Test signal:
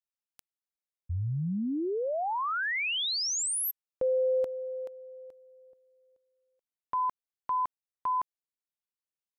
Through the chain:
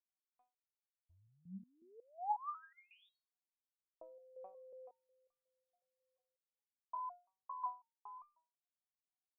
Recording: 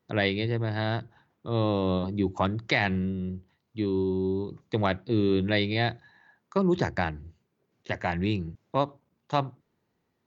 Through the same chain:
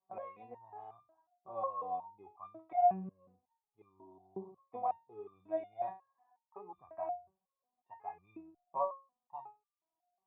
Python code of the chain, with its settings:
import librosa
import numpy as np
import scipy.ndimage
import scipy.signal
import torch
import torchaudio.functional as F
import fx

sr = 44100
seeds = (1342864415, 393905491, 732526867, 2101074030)

y = fx.formant_cascade(x, sr, vowel='a')
y = fx.resonator_held(y, sr, hz=5.5, low_hz=190.0, high_hz=1200.0)
y = y * librosa.db_to_amplitude(16.0)